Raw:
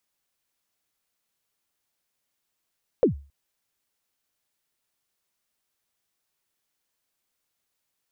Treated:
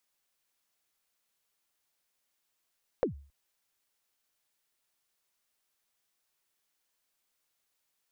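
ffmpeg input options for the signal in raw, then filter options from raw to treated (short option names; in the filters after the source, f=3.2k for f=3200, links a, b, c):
-f lavfi -i "aevalsrc='0.266*pow(10,-3*t/0.35)*sin(2*PI*(560*0.115/log(70/560)*(exp(log(70/560)*min(t,0.115)/0.115)-1)+70*max(t-0.115,0)))':d=0.27:s=44100"
-af "acompressor=threshold=-26dB:ratio=6,equalizer=f=110:w=0.34:g=-5.5"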